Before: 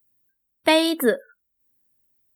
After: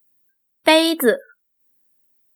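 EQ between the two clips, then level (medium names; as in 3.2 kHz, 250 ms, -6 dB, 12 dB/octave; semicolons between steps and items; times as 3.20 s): high-pass 210 Hz 6 dB/octave; +4.5 dB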